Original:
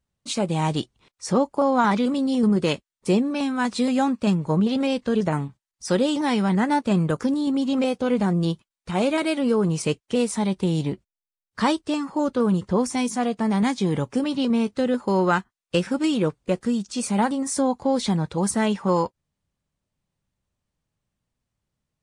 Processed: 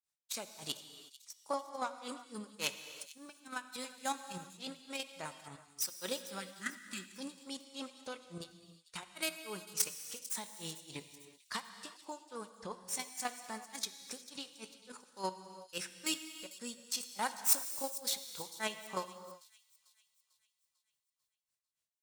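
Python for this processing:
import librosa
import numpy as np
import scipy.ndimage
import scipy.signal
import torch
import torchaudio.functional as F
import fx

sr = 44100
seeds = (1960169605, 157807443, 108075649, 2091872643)

y = fx.tracing_dist(x, sr, depth_ms=0.079)
y = fx.riaa(y, sr, side='recording')
y = fx.spec_repair(y, sr, seeds[0], start_s=6.5, length_s=0.64, low_hz=390.0, high_hz=1200.0, source='after')
y = fx.peak_eq(y, sr, hz=270.0, db=-7.5, octaves=2.7)
y = fx.notch(y, sr, hz=3100.0, q=27.0)
y = fx.level_steps(y, sr, step_db=9)
y = fx.granulator(y, sr, seeds[1], grain_ms=200.0, per_s=3.5, spray_ms=100.0, spread_st=0)
y = fx.echo_wet_highpass(y, sr, ms=446, feedback_pct=47, hz=3600.0, wet_db=-15.5)
y = fx.rev_gated(y, sr, seeds[2], gate_ms=390, shape='flat', drr_db=9.0)
y = y * librosa.db_to_amplitude(-5.0)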